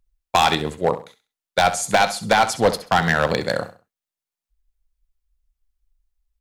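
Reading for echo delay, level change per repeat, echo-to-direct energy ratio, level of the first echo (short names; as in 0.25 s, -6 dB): 66 ms, -11.0 dB, -12.5 dB, -13.0 dB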